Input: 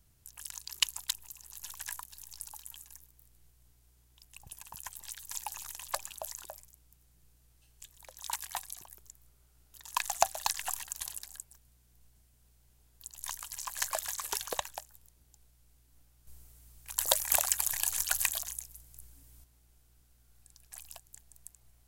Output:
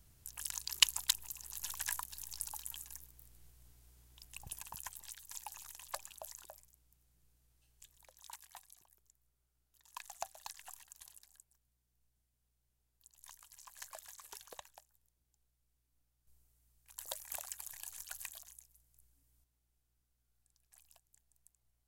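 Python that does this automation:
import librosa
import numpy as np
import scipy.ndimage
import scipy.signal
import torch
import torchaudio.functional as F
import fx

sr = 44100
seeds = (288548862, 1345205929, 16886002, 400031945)

y = fx.gain(x, sr, db=fx.line((4.52, 2.0), (5.25, -8.0), (7.94, -8.0), (8.42, -16.5)))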